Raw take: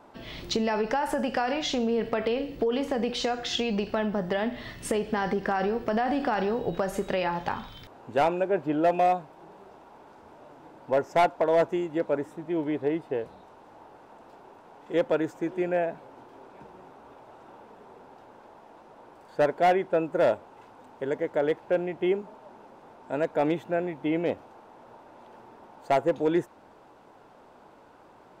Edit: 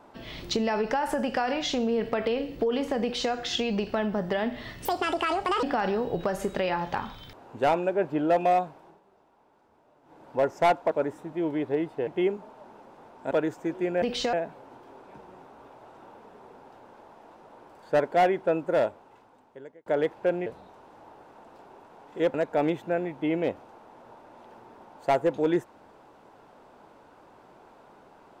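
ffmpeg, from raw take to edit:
ffmpeg -i in.wav -filter_complex "[0:a]asplit=13[link_01][link_02][link_03][link_04][link_05][link_06][link_07][link_08][link_09][link_10][link_11][link_12][link_13];[link_01]atrim=end=4.854[link_14];[link_02]atrim=start=4.85:end=6.17,asetpts=PTS-STARTPTS,asetrate=74529,aresample=44100[link_15];[link_03]atrim=start=6.166:end=9.54,asetpts=PTS-STARTPTS,afade=type=out:start_time=3.024:duration=0.35:curve=qsin:silence=0.237137[link_16];[link_04]atrim=start=9.54:end=10.56,asetpts=PTS-STARTPTS,volume=-12.5dB[link_17];[link_05]atrim=start=10.56:end=11.452,asetpts=PTS-STARTPTS,afade=type=in:duration=0.35:curve=qsin:silence=0.237137[link_18];[link_06]atrim=start=12.038:end=13.202[link_19];[link_07]atrim=start=21.918:end=23.162[link_20];[link_08]atrim=start=15.078:end=15.792[link_21];[link_09]atrim=start=3.018:end=3.332[link_22];[link_10]atrim=start=15.788:end=21.32,asetpts=PTS-STARTPTS,afade=type=out:start_time=4.272:duration=1.26[link_23];[link_11]atrim=start=21.32:end=21.922,asetpts=PTS-STARTPTS,afade=type=in:duration=0.004:curve=hsin[link_24];[link_12]atrim=start=13.198:end=15.082[link_25];[link_13]atrim=start=23.158[link_26];[link_14][link_15]acrossfade=duration=0.004:curve1=hsin:curve2=hsin[link_27];[link_16][link_17][link_18]concat=n=3:v=0:a=1[link_28];[link_27][link_28]acrossfade=duration=0.004:curve1=hsin:curve2=hsin[link_29];[link_29][link_19]acrossfade=duration=0.004:curve1=hsin:curve2=hsin[link_30];[link_30][link_20]acrossfade=duration=0.004:curve1=hsin:curve2=hsin[link_31];[link_31][link_21]acrossfade=duration=0.004:curve1=hsin:curve2=hsin[link_32];[link_32][link_22]acrossfade=duration=0.004:curve1=hsin:curve2=hsin[link_33];[link_23][link_24]concat=n=2:v=0:a=1[link_34];[link_33][link_34]acrossfade=duration=0.004:curve1=hsin:curve2=hsin[link_35];[link_35][link_25]acrossfade=duration=0.004:curve1=hsin:curve2=hsin[link_36];[link_36][link_26]acrossfade=duration=0.004:curve1=hsin:curve2=hsin" out.wav

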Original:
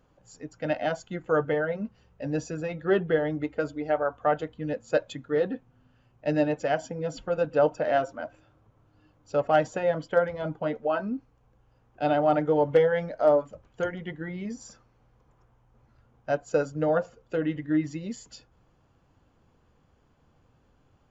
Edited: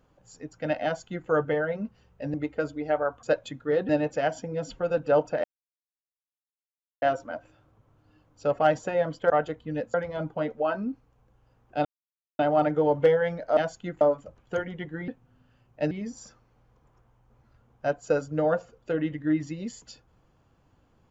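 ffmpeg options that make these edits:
ffmpeg -i in.wav -filter_complex "[0:a]asplit=12[link_01][link_02][link_03][link_04][link_05][link_06][link_07][link_08][link_09][link_10][link_11][link_12];[link_01]atrim=end=2.342[link_13];[link_02]atrim=start=3.338:end=4.232[link_14];[link_03]atrim=start=4.868:end=5.532[link_15];[link_04]atrim=start=6.358:end=7.91,asetpts=PTS-STARTPTS,afade=type=out:start_time=1.548:duration=0.004:curve=hsin,apad=pad_dur=1.58[link_16];[link_05]atrim=start=7.91:end=10.192,asetpts=PTS-STARTPTS,afade=type=in:duration=0.004:curve=hsin[link_17];[link_06]atrim=start=4.228:end=4.872[link_18];[link_07]atrim=start=10.188:end=12.1,asetpts=PTS-STARTPTS,afade=type=out:start_time=1.908:duration=0.004:curve=hsin,apad=pad_dur=0.54[link_19];[link_08]atrim=start=12.1:end=13.282,asetpts=PTS-STARTPTS,afade=type=in:duration=0.004:curve=hsin[link_20];[link_09]atrim=start=0.838:end=1.282[link_21];[link_10]atrim=start=13.278:end=14.352[link_22];[link_11]atrim=start=5.528:end=6.362[link_23];[link_12]atrim=start=14.348[link_24];[link_13][link_14]acrossfade=duration=0.004:curve1=hsin:curve2=hsin[link_25];[link_25][link_15]acrossfade=duration=0.004:curve1=hsin:curve2=hsin[link_26];[link_16][link_17]concat=n=2:v=0:a=1[link_27];[link_26][link_27]acrossfade=duration=0.004:curve1=hsin:curve2=hsin[link_28];[link_28][link_18]acrossfade=duration=0.004:curve1=hsin:curve2=hsin[link_29];[link_19][link_20]concat=n=2:v=0:a=1[link_30];[link_29][link_30]acrossfade=duration=0.004:curve1=hsin:curve2=hsin[link_31];[link_31][link_21]acrossfade=duration=0.004:curve1=hsin:curve2=hsin[link_32];[link_32][link_22]acrossfade=duration=0.004:curve1=hsin:curve2=hsin[link_33];[link_33][link_23]acrossfade=duration=0.004:curve1=hsin:curve2=hsin[link_34];[link_34][link_24]acrossfade=duration=0.004:curve1=hsin:curve2=hsin" out.wav

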